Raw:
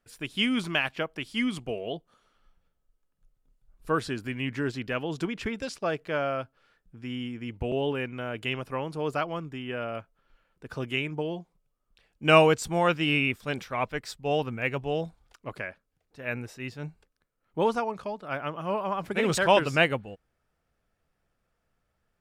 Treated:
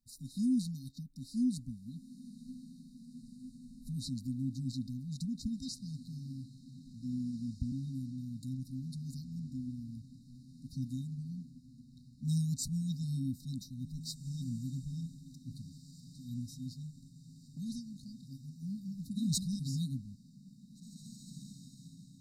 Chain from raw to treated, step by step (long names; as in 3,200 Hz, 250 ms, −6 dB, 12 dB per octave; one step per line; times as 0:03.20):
brick-wall band-stop 270–3,700 Hz
0:16.74–0:18.63: dynamic equaliser 160 Hz, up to −4 dB, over −46 dBFS, Q 0.73
feedback delay with all-pass diffusion 1,929 ms, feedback 56%, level −15 dB
level −2 dB